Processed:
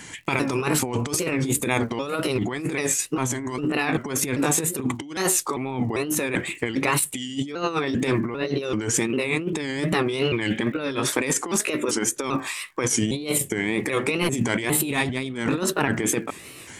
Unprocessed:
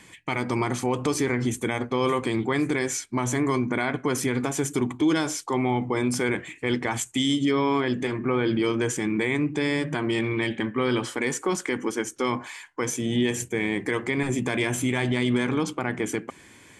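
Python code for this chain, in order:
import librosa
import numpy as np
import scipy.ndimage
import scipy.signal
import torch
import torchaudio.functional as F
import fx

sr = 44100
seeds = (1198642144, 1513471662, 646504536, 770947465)

y = fx.pitch_trill(x, sr, semitones=2.5, every_ms=397)
y = fx.dmg_crackle(y, sr, seeds[0], per_s=68.0, level_db=-53.0)
y = fx.high_shelf(y, sr, hz=5000.0, db=6.0)
y = fx.over_compress(y, sr, threshold_db=-28.0, ratio=-0.5)
y = fx.wow_flutter(y, sr, seeds[1], rate_hz=2.1, depth_cents=130.0)
y = y * librosa.db_to_amplitude(4.5)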